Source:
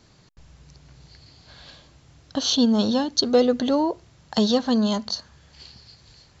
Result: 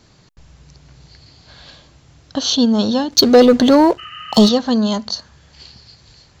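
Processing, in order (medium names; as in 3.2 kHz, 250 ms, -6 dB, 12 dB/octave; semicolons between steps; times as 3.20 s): 3.11–4.49 s: waveshaping leveller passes 2; 4.01–4.50 s: spectral replace 1.2–3.1 kHz after; trim +4.5 dB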